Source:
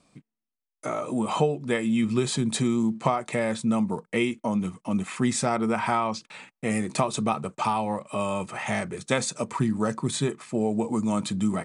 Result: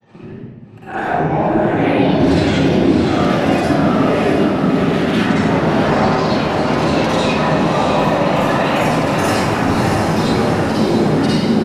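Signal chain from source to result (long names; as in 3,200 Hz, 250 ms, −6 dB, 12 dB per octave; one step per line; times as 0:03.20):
Bessel low-pass filter 2,200 Hz, order 2
noise gate with hold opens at −46 dBFS
high-pass filter 100 Hz
comb filter 6.6 ms, depth 45%
downward compressor, threshold −28 dBFS, peak gain reduction 13.5 dB
transient designer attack −11 dB, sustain +10 dB
upward compression, threshold −33 dBFS
granular cloud, pitch spread up and down by 7 semitones
convolution reverb RT60 1.5 s, pre-delay 45 ms, DRR −10.5 dB
delay with pitch and tempo change per echo 88 ms, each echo +1 semitone, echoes 3, each echo −6 dB
feedback delay with all-pass diffusion 657 ms, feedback 54%, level −3.5 dB
level +5 dB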